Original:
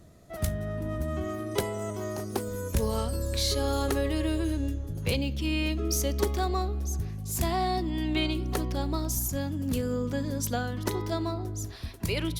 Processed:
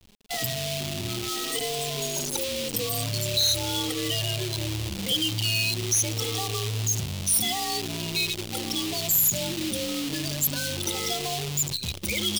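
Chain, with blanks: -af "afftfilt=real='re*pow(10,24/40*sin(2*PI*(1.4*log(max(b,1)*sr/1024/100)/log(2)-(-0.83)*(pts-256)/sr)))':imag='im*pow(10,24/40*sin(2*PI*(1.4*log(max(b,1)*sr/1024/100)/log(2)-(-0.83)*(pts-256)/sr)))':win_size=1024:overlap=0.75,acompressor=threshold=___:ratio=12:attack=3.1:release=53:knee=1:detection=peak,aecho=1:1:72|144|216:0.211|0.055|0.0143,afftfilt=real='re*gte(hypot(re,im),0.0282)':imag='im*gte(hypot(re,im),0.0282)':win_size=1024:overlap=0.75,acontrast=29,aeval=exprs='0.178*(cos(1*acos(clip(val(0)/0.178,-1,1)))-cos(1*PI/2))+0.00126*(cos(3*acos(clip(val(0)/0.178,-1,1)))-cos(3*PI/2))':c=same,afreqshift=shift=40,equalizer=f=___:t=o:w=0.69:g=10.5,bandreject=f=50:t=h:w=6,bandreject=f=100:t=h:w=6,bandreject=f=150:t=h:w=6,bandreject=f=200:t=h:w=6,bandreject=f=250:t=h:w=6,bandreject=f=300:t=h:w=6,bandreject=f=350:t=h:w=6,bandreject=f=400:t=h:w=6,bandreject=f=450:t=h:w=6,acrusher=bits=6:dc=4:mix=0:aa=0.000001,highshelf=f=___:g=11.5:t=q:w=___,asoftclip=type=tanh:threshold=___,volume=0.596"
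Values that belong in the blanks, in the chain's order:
0.0398, 16k, 2.2k, 1.5, 0.251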